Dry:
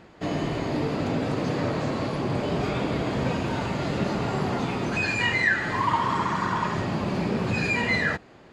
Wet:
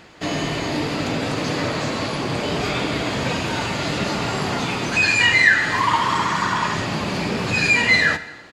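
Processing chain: tilt shelf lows -6 dB, about 1500 Hz; feedback echo 0.113 s, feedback 57%, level -22 dB; on a send at -13 dB: reverb RT60 1.1 s, pre-delay 3 ms; on the sum: gain +7 dB

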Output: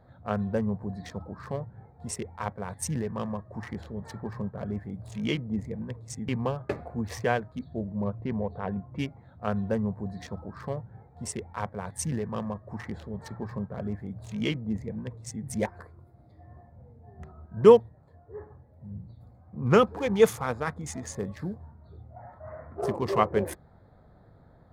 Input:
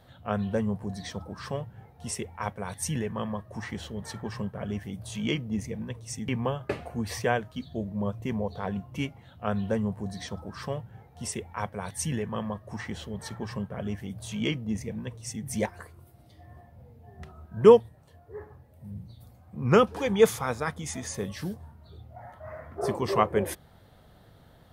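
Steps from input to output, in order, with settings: Wiener smoothing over 15 samples; 8.04–8.99 LPF 3300 Hz 12 dB/oct

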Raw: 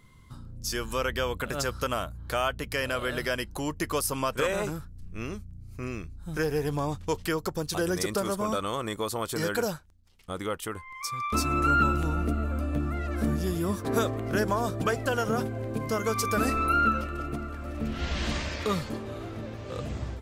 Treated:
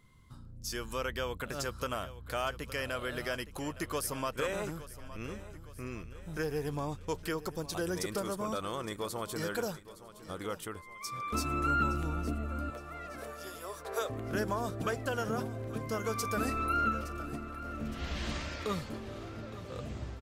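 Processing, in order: 12.7–14.1 steep high-pass 410 Hz 72 dB/oct; on a send: feedback echo 0.865 s, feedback 48%, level -15.5 dB; on the sum: gain -6.5 dB

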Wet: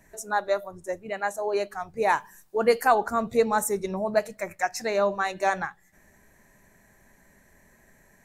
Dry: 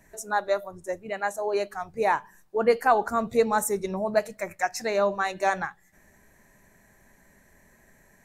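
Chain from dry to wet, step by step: 2.08–2.94 high shelf 3100 Hz -> 5200 Hz +10.5 dB

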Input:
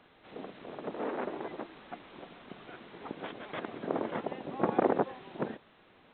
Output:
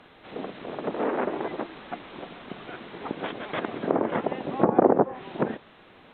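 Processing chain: treble ducked by the level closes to 1100 Hz, closed at -26.5 dBFS; gain +8.5 dB

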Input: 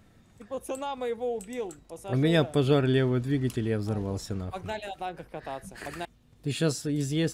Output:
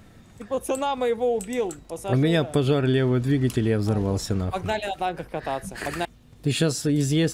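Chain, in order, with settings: compressor 6:1, threshold -26 dBFS, peak gain reduction 8.5 dB; gain +8.5 dB

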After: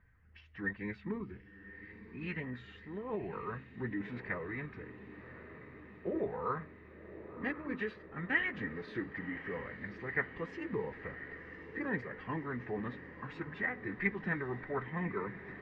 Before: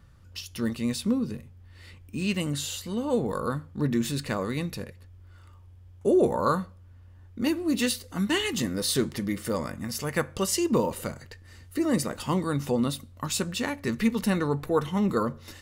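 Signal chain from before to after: bin magnitudes rounded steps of 15 dB; formant-preserving pitch shift -2.5 st; ladder low-pass 2000 Hz, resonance 80%; on a send: diffused feedback echo 1.085 s, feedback 68%, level -13 dB

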